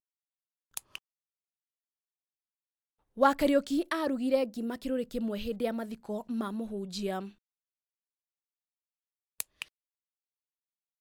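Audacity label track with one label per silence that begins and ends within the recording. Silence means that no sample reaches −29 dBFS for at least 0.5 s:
0.960000	3.200000	silence
7.190000	9.400000	silence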